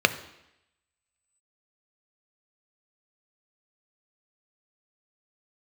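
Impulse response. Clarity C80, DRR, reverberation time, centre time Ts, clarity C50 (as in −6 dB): 17.0 dB, 10.0 dB, 0.85 s, 7 ms, 15.0 dB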